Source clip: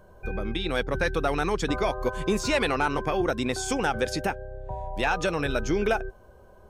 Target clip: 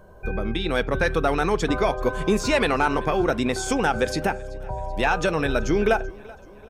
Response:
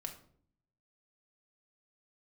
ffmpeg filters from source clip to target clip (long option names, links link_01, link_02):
-filter_complex "[0:a]aecho=1:1:382|764|1146|1528:0.0708|0.0389|0.0214|0.0118,asplit=2[link_01][link_02];[1:a]atrim=start_sample=2205,afade=type=out:start_time=0.14:duration=0.01,atrim=end_sample=6615,lowpass=2800[link_03];[link_02][link_03]afir=irnorm=-1:irlink=0,volume=-7.5dB[link_04];[link_01][link_04]amix=inputs=2:normalize=0,volume=2dB"